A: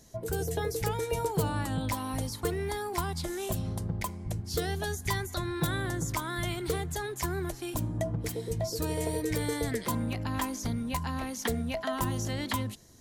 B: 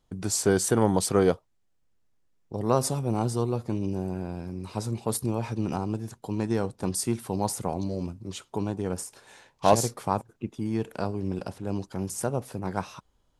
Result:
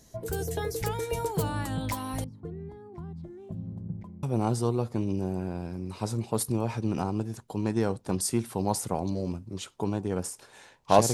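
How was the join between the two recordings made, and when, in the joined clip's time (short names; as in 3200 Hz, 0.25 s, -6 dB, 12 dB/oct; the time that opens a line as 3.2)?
A
2.24–4.23 band-pass 170 Hz, Q 1.6
4.23 switch to B from 2.97 s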